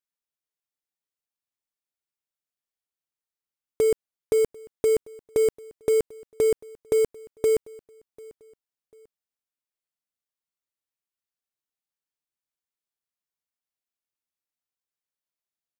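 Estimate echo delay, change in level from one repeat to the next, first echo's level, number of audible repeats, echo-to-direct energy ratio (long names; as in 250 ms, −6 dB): 744 ms, −9.0 dB, −23.5 dB, 2, −23.0 dB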